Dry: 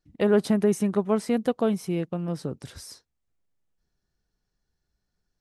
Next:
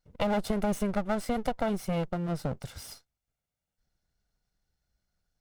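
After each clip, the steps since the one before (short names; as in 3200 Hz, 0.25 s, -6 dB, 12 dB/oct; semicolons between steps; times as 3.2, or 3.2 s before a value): minimum comb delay 1.4 ms; compressor, threshold -24 dBFS, peak gain reduction 6 dB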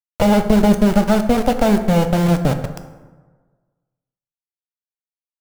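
tilt shelf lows +7 dB, about 1300 Hz; sample gate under -27.5 dBFS; plate-style reverb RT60 1.4 s, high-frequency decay 0.5×, DRR 7.5 dB; gain +8.5 dB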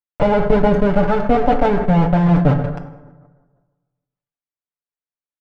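LPF 2000 Hz 12 dB/oct; comb 6.9 ms, depth 73%; sustainer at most 66 dB/s; gain -1 dB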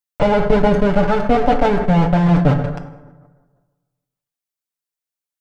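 high shelf 3300 Hz +8.5 dB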